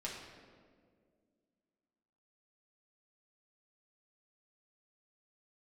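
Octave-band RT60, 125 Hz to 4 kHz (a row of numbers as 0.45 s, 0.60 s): 2.2 s, 2.8 s, 2.4 s, 1.6 s, 1.3 s, 1.1 s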